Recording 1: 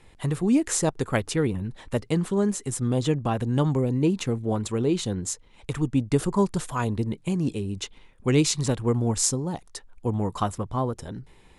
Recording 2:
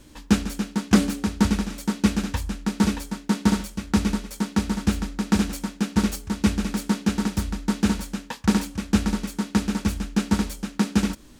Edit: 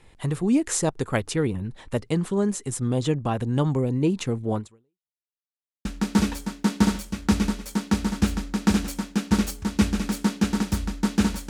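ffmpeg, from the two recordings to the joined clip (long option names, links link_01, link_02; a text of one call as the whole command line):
ffmpeg -i cue0.wav -i cue1.wav -filter_complex "[0:a]apad=whole_dur=11.49,atrim=end=11.49,asplit=2[link_01][link_02];[link_01]atrim=end=5.16,asetpts=PTS-STARTPTS,afade=type=out:start_time=4.58:duration=0.58:curve=exp[link_03];[link_02]atrim=start=5.16:end=5.85,asetpts=PTS-STARTPTS,volume=0[link_04];[1:a]atrim=start=2.5:end=8.14,asetpts=PTS-STARTPTS,afade=type=in:duration=0.004:curve=hsin[link_05];[link_03][link_04][link_05]concat=n=3:v=0:a=1" out.wav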